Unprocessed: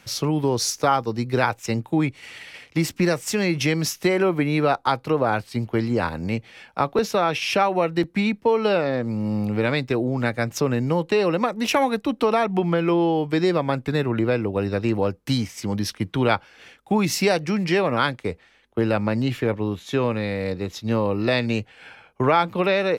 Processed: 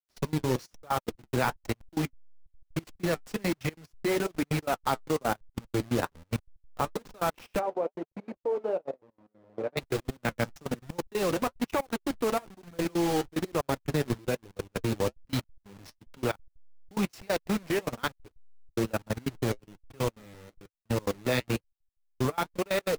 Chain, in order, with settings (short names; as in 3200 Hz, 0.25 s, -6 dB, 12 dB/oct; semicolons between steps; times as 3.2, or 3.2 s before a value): level-crossing sampler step -22 dBFS; level quantiser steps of 23 dB; step gate "x.x.xxxx.x." 183 bpm -24 dB; 7.59–9.77 band-pass 530 Hz, Q 1.6; flange 1.1 Hz, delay 1.1 ms, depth 7.8 ms, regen -45%; gain +1 dB